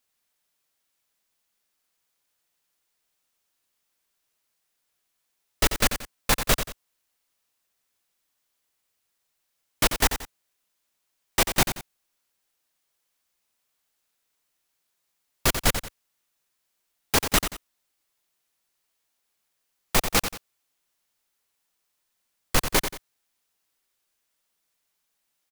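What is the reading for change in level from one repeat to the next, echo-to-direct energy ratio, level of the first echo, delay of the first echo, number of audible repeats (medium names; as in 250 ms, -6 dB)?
-9.5 dB, -8.5 dB, -9.0 dB, 90 ms, 2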